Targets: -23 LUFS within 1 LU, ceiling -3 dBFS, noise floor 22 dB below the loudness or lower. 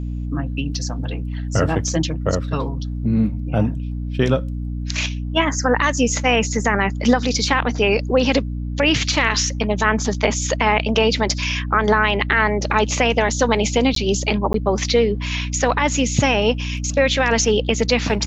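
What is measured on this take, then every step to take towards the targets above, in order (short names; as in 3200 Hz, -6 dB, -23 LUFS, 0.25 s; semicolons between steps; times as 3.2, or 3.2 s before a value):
dropouts 2; longest dropout 13 ms; hum 60 Hz; harmonics up to 300 Hz; hum level -23 dBFS; loudness -19.5 LUFS; peak -2.0 dBFS; loudness target -23.0 LUFS
-> interpolate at 13.95/14.53, 13 ms; de-hum 60 Hz, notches 5; gain -3.5 dB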